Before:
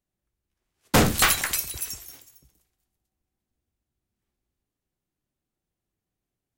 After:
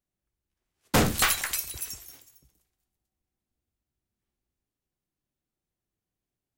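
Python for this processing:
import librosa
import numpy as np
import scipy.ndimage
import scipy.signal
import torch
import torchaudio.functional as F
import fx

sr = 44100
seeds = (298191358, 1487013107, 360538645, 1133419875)

y = fx.peak_eq(x, sr, hz=180.0, db=-6.5, octaves=2.7, at=(1.24, 1.67))
y = y * librosa.db_to_amplitude(-3.5)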